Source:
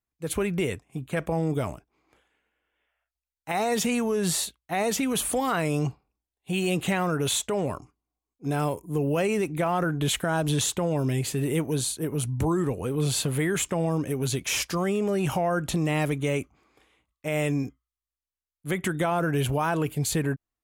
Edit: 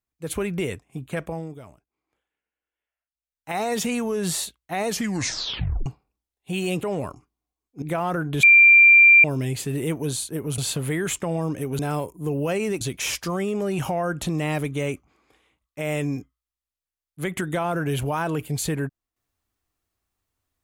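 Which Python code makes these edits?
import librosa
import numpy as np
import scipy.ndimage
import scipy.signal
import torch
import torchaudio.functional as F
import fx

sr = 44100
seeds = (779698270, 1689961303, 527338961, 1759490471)

y = fx.edit(x, sr, fx.fade_down_up(start_s=1.13, length_s=2.41, db=-14.5, fade_s=0.43),
    fx.tape_stop(start_s=4.88, length_s=0.98),
    fx.cut(start_s=6.83, length_s=0.66),
    fx.move(start_s=8.48, length_s=1.02, to_s=14.28),
    fx.bleep(start_s=10.11, length_s=0.81, hz=2370.0, db=-8.5),
    fx.cut(start_s=12.26, length_s=0.81), tone=tone)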